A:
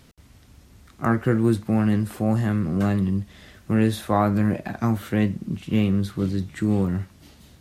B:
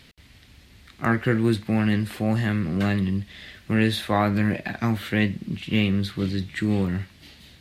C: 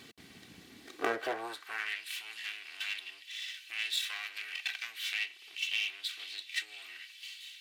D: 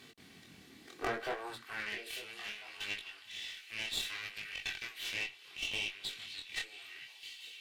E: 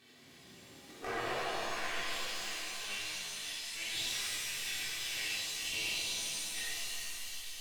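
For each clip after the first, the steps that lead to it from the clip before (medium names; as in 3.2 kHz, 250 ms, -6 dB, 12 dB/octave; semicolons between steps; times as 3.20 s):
high-order bell 2.8 kHz +9.5 dB; trim -1.5 dB
comb filter that takes the minimum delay 2.6 ms; compression, threshold -29 dBFS, peak gain reduction 10.5 dB; high-pass sweep 190 Hz -> 2.7 kHz, 0.67–2.04 s
valve stage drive 25 dB, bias 0.6; chorus 0.67 Hz, delay 19.5 ms, depth 6.8 ms; repeats whose band climbs or falls 449 ms, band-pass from 150 Hz, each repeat 1.4 oct, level -9 dB; trim +3 dB
pitch-shifted reverb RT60 2.5 s, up +7 st, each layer -2 dB, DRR -7.5 dB; trim -8 dB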